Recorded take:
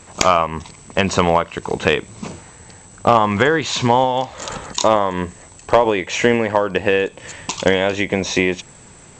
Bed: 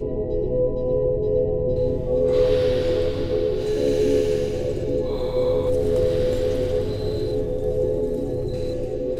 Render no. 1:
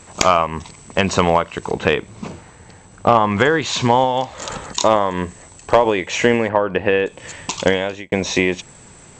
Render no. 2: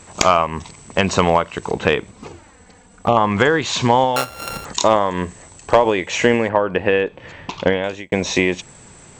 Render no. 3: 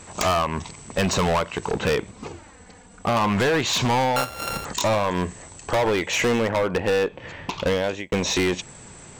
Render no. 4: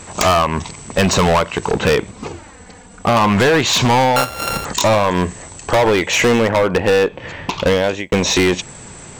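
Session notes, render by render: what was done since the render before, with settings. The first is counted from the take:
1.71–3.38 LPF 3600 Hz 6 dB/oct; 6.48–7.05 LPF 2100 Hz -> 3500 Hz; 7.66–8.12 fade out
2.11–3.17 envelope flanger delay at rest 4.7 ms, full sweep at -13.5 dBFS; 4.16–4.65 sample sorter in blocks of 32 samples; 7.03–7.84 air absorption 240 m
hard clip -17.5 dBFS, distortion -5 dB
gain +7.5 dB

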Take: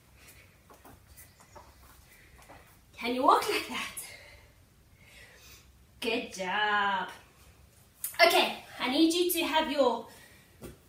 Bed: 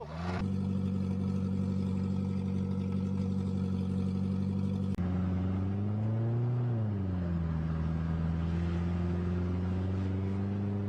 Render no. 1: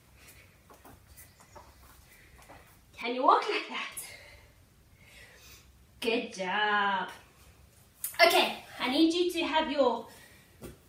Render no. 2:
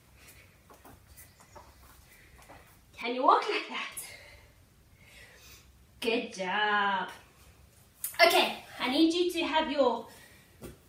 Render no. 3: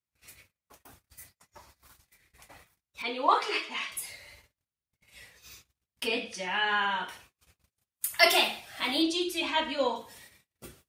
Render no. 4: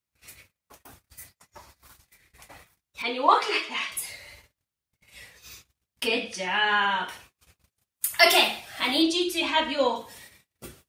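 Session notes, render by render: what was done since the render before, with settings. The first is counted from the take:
3.02–3.92 BPF 290–4300 Hz; 6.07–7.08 speaker cabinet 100–10000 Hz, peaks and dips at 220 Hz +4 dB, 450 Hz +3 dB, 7300 Hz -8 dB; 9.02–9.96 air absorption 83 m
nothing audible
gate -54 dBFS, range -35 dB; tilt shelf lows -4 dB, about 1300 Hz
gain +4.5 dB; limiter -3 dBFS, peak gain reduction 2 dB

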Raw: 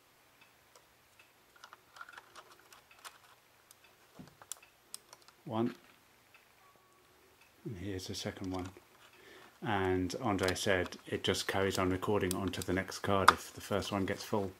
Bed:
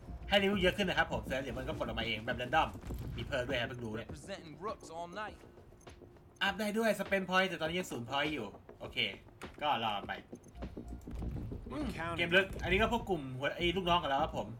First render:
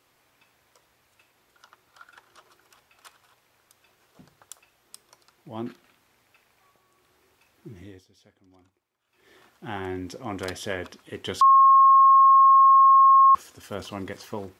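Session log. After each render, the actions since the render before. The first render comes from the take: 7.78–9.33 dip -19.5 dB, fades 0.27 s; 11.41–13.35 bleep 1080 Hz -11.5 dBFS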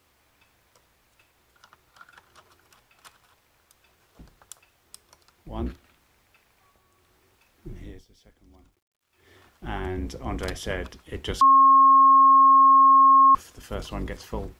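octaver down 2 oct, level +3 dB; requantised 12-bit, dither none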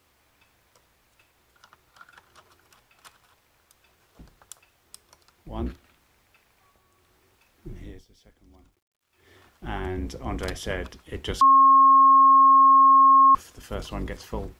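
nothing audible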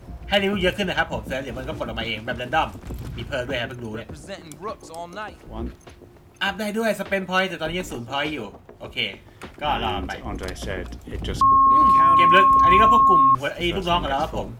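add bed +9 dB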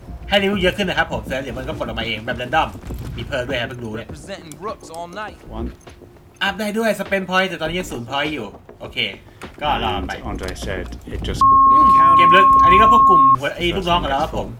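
gain +4 dB; limiter -1 dBFS, peak gain reduction 1 dB

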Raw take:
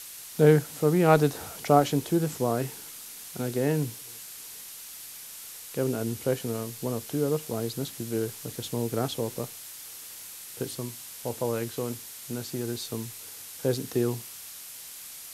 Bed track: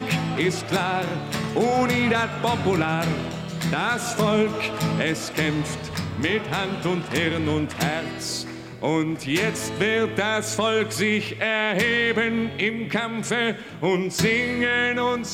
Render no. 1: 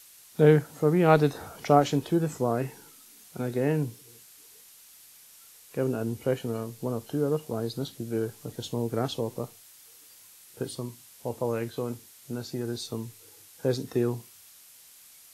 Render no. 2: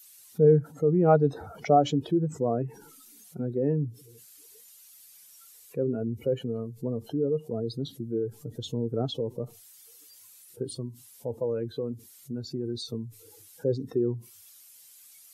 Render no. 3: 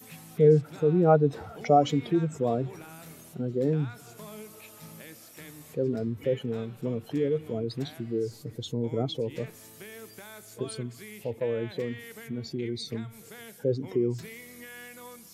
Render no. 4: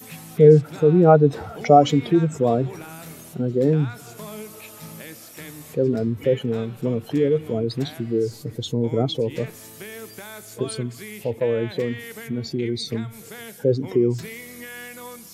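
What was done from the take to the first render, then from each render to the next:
noise print and reduce 10 dB
spectral contrast raised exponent 1.9
add bed track -24 dB
gain +7.5 dB; limiter -1 dBFS, peak gain reduction 1 dB

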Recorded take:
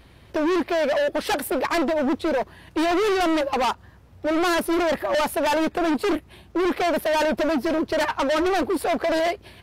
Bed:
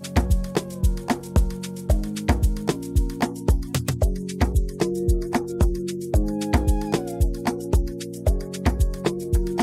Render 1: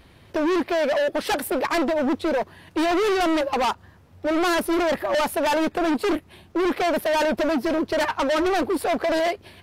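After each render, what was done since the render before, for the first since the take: de-hum 60 Hz, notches 2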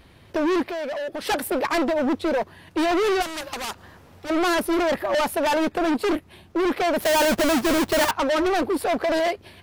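0.65–1.22 compressor, threshold -28 dBFS; 3.22–4.3 spectral compressor 2:1; 7–8.11 half-waves squared off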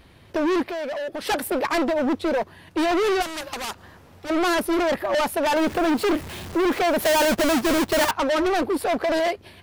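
5.56–7.13 zero-crossing step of -31 dBFS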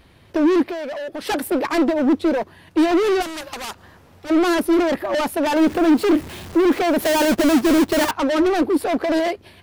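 dynamic EQ 300 Hz, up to +8 dB, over -37 dBFS, Q 2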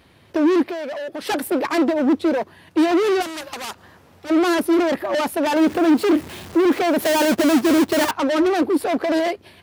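HPF 52 Hz; low shelf 70 Hz -8.5 dB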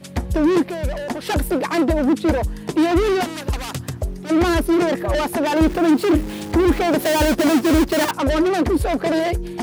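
add bed -4 dB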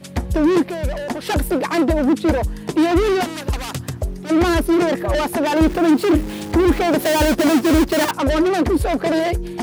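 gain +1 dB

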